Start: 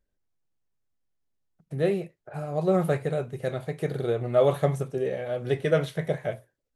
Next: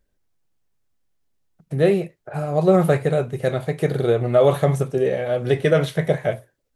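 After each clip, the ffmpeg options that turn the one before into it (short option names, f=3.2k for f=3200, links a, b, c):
-af "alimiter=level_in=13dB:limit=-1dB:release=50:level=0:latency=1,volume=-5dB"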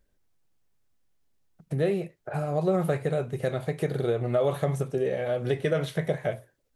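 -af "acompressor=threshold=-29dB:ratio=2"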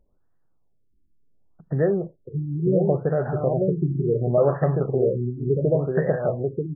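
-af "aecho=1:1:938:0.668,afftfilt=real='re*lt(b*sr/1024,380*pow(2000/380,0.5+0.5*sin(2*PI*0.7*pts/sr)))':imag='im*lt(b*sr/1024,380*pow(2000/380,0.5+0.5*sin(2*PI*0.7*pts/sr)))':win_size=1024:overlap=0.75,volume=4.5dB"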